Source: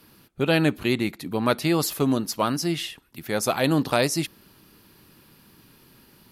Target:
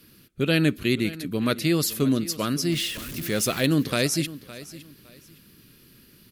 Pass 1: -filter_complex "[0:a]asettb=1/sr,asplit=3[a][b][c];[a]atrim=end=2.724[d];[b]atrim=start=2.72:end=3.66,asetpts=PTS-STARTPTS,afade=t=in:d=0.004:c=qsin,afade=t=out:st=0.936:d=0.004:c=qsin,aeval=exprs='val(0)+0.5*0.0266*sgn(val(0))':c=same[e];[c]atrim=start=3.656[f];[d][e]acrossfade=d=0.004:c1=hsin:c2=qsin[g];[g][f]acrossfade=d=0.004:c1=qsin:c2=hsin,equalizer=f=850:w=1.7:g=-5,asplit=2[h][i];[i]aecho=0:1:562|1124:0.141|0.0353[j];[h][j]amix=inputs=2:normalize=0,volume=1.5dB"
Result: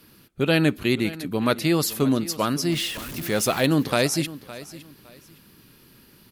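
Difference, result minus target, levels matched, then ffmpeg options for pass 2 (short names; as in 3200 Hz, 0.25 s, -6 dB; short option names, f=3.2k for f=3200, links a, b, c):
1000 Hz band +5.0 dB
-filter_complex "[0:a]asettb=1/sr,asplit=3[a][b][c];[a]atrim=end=2.724[d];[b]atrim=start=2.72:end=3.66,asetpts=PTS-STARTPTS,afade=t=in:d=0.004:c=qsin,afade=t=out:st=0.936:d=0.004:c=qsin,aeval=exprs='val(0)+0.5*0.0266*sgn(val(0))':c=same[e];[c]atrim=start=3.656[f];[d][e]acrossfade=d=0.004:c1=hsin:c2=qsin[g];[g][f]acrossfade=d=0.004:c1=qsin:c2=hsin,equalizer=f=850:w=1.7:g=-16.5,asplit=2[h][i];[i]aecho=0:1:562|1124:0.141|0.0353[j];[h][j]amix=inputs=2:normalize=0,volume=1.5dB"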